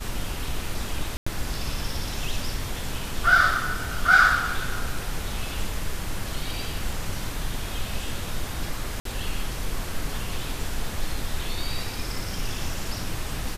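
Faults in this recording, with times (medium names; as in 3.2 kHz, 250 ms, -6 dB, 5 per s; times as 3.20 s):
1.17–1.26 s: dropout 95 ms
9.00–9.05 s: dropout 53 ms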